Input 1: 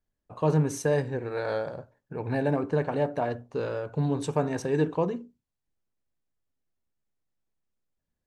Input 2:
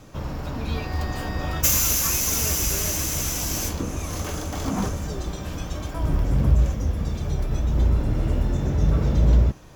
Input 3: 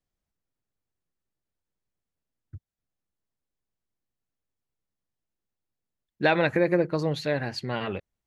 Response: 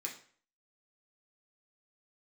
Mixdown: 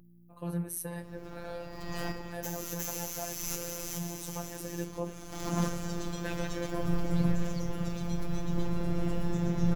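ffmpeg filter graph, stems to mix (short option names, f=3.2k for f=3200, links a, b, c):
-filter_complex "[0:a]aexciter=amount=15:drive=7.8:freq=9.9k,volume=-8.5dB,asplit=2[a][b];[1:a]adelay=800,volume=-1dB,asplit=2[c][d];[d]volume=-15dB[e];[2:a]volume=-14.5dB[f];[b]apad=whole_len=465529[g];[c][g]sidechaincompress=threshold=-48dB:ratio=12:attack=16:release=354[h];[e]aecho=0:1:359:1[i];[a][h][f][i]amix=inputs=4:normalize=0,aeval=exprs='val(0)+0.00355*(sin(2*PI*60*n/s)+sin(2*PI*2*60*n/s)/2+sin(2*PI*3*60*n/s)/3+sin(2*PI*4*60*n/s)/4+sin(2*PI*5*60*n/s)/5)':c=same,afftfilt=real='hypot(re,im)*cos(PI*b)':imag='0':win_size=1024:overlap=0.75"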